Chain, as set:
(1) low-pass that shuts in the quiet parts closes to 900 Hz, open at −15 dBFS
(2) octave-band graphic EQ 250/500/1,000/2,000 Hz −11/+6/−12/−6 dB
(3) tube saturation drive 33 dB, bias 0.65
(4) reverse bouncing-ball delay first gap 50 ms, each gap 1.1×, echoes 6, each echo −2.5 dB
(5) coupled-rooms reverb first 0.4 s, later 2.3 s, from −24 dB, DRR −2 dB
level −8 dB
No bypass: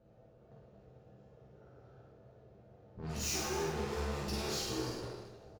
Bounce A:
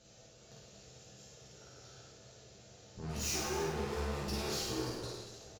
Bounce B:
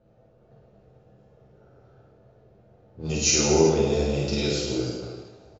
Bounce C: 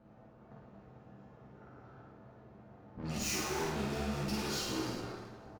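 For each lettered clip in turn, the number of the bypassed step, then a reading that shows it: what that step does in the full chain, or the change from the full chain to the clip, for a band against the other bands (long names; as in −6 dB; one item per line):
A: 1, change in momentary loudness spread +8 LU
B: 3, change in crest factor +2.5 dB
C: 2, 250 Hz band +3.5 dB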